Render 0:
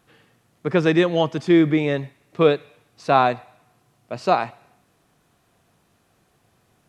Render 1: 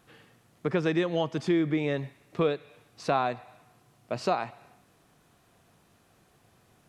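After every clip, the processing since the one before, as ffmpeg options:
-af "acompressor=threshold=-27dB:ratio=2.5"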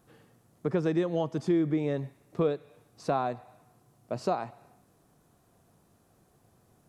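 -af "equalizer=f=2.6k:w=0.63:g=-10.5"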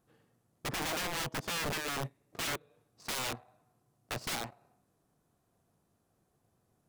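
-af "aeval=exprs='(mod(31.6*val(0)+1,2)-1)/31.6':c=same,aeval=exprs='0.0335*(cos(1*acos(clip(val(0)/0.0335,-1,1)))-cos(1*PI/2))+0.00335*(cos(7*acos(clip(val(0)/0.0335,-1,1)))-cos(7*PI/2))':c=same"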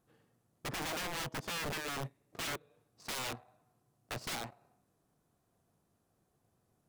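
-af "volume=34dB,asoftclip=hard,volume=-34dB,volume=-1.5dB"

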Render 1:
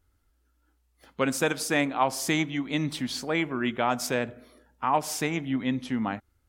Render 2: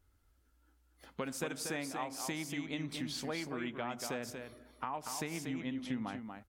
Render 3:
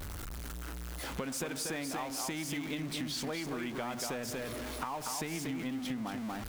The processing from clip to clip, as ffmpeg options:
-af "acompressor=threshold=-35dB:ratio=6,aecho=1:1:237:0.501,volume=-2dB"
-af "aeval=exprs='val(0)+0.5*0.00944*sgn(val(0))':c=same,acompressor=threshold=-40dB:ratio=4,volume=5dB"

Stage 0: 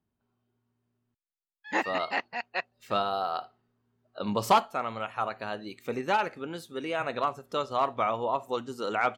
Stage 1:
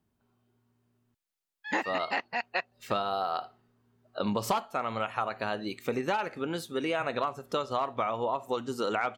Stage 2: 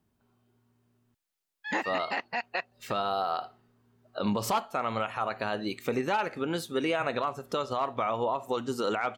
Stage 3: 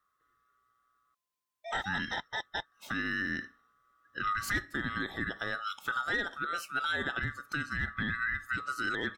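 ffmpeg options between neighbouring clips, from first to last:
-af "acompressor=threshold=-32dB:ratio=6,volume=5.5dB"
-af "alimiter=limit=-21.5dB:level=0:latency=1:release=41,volume=2.5dB"
-af "afftfilt=real='real(if(lt(b,960),b+48*(1-2*mod(floor(b/48),2)),b),0)':imag='imag(if(lt(b,960),b+48*(1-2*mod(floor(b/48),2)),b),0)':win_size=2048:overlap=0.75,volume=-4dB"

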